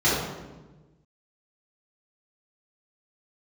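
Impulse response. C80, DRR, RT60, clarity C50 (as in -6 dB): 2.5 dB, -11.0 dB, 1.2 s, -1.0 dB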